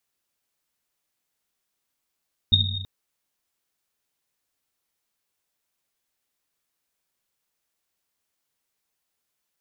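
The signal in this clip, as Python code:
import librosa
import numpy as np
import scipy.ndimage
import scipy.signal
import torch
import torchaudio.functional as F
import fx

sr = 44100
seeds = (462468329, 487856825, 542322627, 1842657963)

y = fx.risset_drum(sr, seeds[0], length_s=0.33, hz=96.0, decay_s=1.6, noise_hz=3700.0, noise_width_hz=110.0, noise_pct=55)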